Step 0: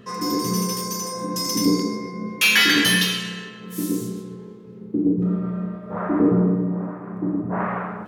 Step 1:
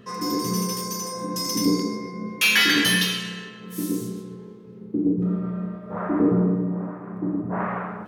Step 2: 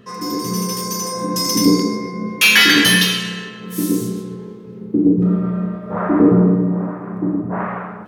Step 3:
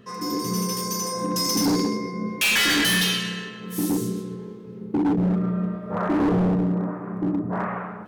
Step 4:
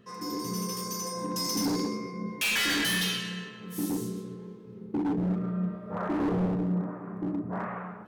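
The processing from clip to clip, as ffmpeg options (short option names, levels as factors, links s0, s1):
-af "bandreject=f=7200:w=20,volume=0.794"
-af "dynaudnorm=f=150:g=11:m=2.11,volume=1.26"
-af "volume=5.01,asoftclip=hard,volume=0.2,volume=0.631"
-af "flanger=delay=5.5:depth=9.2:regen=82:speed=0.89:shape=sinusoidal,volume=0.75"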